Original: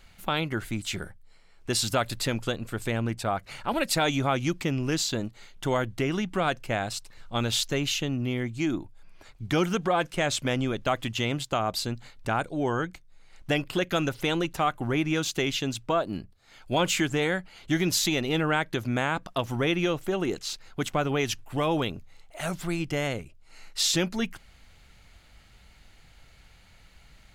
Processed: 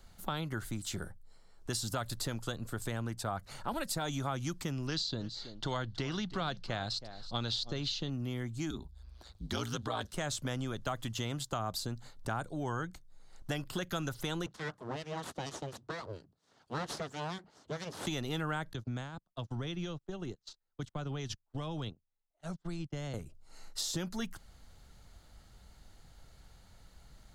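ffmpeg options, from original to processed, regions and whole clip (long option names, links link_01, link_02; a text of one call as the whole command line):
ffmpeg -i in.wav -filter_complex "[0:a]asettb=1/sr,asplit=3[link_01][link_02][link_03];[link_01]atrim=end=4.874[link_04];[link_02]atrim=start=4.87:end=8.1,asetpts=PTS-STARTPTS,afade=type=in:duration=0.004:curve=qsin,afade=type=out:start_time=3.226:duration=0.004:curve=qsin,lowpass=frequency=4300:width_type=q:width=4,aecho=1:1:322:0.119,atrim=end_sample=142443[link_05];[link_03]atrim=start=8.096[link_06];[link_04][link_05]acrossfade=duration=0.004:curve1=hsin:curve2=qsin[link_07];[link_07][link_06]acrossfade=duration=0.004:curve1=qsin:curve2=hsin,asettb=1/sr,asplit=3[link_08][link_09][link_10];[link_08]atrim=end=8.704[link_11];[link_09]atrim=start=8.7:end=10.12,asetpts=PTS-STARTPTS,afade=type=in:duration=0.004:curve=qsin,afade=type=out:start_time=1.416:duration=0.004:curve=qsin,equalizer=frequency=3900:width=2:gain=12.5,aeval=exprs='val(0)*sin(2*PI*58*n/s)':channel_layout=same[link_12];[link_10]atrim=start=10.116[link_13];[link_11][link_12]acrossfade=duration=0.004:curve1=hsin:curve2=qsin[link_14];[link_14][link_13]acrossfade=duration=0.004:curve1=qsin:curve2=hsin,asettb=1/sr,asplit=3[link_15][link_16][link_17];[link_15]atrim=end=14.464[link_18];[link_16]atrim=start=14.46:end=18.07,asetpts=PTS-STARTPTS,afade=type=in:duration=0.004:curve=qsin,afade=type=out:start_time=3.606:duration=0.004:curve=qsin,acrossover=split=1300[link_19][link_20];[link_19]aeval=exprs='val(0)*(1-0.7/2+0.7/2*cos(2*PI*4.3*n/s))':channel_layout=same[link_21];[link_20]aeval=exprs='val(0)*(1-0.7/2-0.7/2*cos(2*PI*4.3*n/s))':channel_layout=same[link_22];[link_21][link_22]amix=inputs=2:normalize=0,aeval=exprs='abs(val(0))':channel_layout=same,highpass=120,lowpass=5600[link_23];[link_17]atrim=start=18.066[link_24];[link_18][link_23]acrossfade=duration=0.004:curve1=hsin:curve2=qsin[link_25];[link_25][link_24]acrossfade=duration=0.004:curve1=qsin:curve2=hsin,asettb=1/sr,asplit=3[link_26][link_27][link_28];[link_26]atrim=end=18.734[link_29];[link_27]atrim=start=18.73:end=23.14,asetpts=PTS-STARTPTS,afade=type=in:duration=0.004:curve=qsin,afade=type=out:start_time=4.406:duration=0.004:curve=qsin,lowpass=4500,acrossover=split=170|3000[link_30][link_31][link_32];[link_31]acompressor=threshold=-42dB:ratio=2:attack=3.2:release=140:knee=2.83:detection=peak[link_33];[link_30][link_33][link_32]amix=inputs=3:normalize=0,agate=range=-35dB:threshold=-36dB:ratio=16:release=100:detection=peak[link_34];[link_28]atrim=start=23.136[link_35];[link_29][link_34]acrossfade=duration=0.004:curve1=hsin:curve2=qsin[link_36];[link_36][link_35]acrossfade=duration=0.004:curve1=qsin:curve2=hsin,equalizer=frequency=2400:width_type=o:width=0.88:gain=-13,acrossover=split=180|950[link_37][link_38][link_39];[link_37]acompressor=threshold=-37dB:ratio=4[link_40];[link_38]acompressor=threshold=-40dB:ratio=4[link_41];[link_39]acompressor=threshold=-34dB:ratio=4[link_42];[link_40][link_41][link_42]amix=inputs=3:normalize=0,volume=-1.5dB" out.wav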